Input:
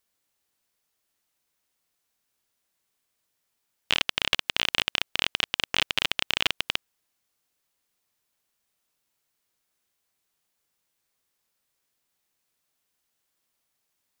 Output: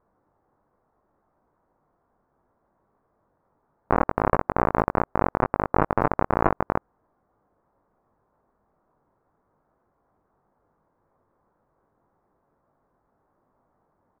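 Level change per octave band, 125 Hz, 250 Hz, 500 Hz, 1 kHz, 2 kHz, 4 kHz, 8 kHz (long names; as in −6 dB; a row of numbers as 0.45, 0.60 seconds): +16.0 dB, +16.0 dB, +16.0 dB, +14.0 dB, −5.0 dB, below −35 dB, below −35 dB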